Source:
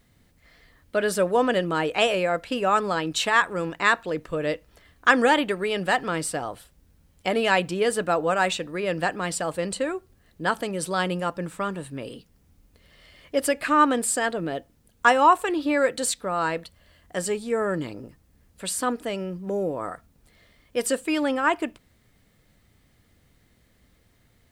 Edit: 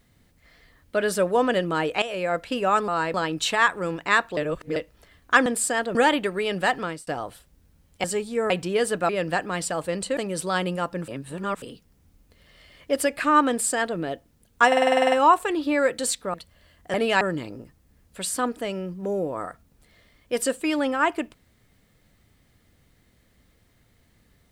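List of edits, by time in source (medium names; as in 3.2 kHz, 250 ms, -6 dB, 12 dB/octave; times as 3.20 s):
2.02–2.34 s: fade in, from -15 dB
4.11–4.50 s: reverse
6.04–6.32 s: fade out
7.29–7.56 s: swap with 17.19–17.65 s
8.15–8.79 s: delete
9.87–10.61 s: delete
11.52–12.06 s: reverse
13.93–14.42 s: copy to 5.20 s
15.11 s: stutter 0.05 s, 10 plays
16.33–16.59 s: move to 2.88 s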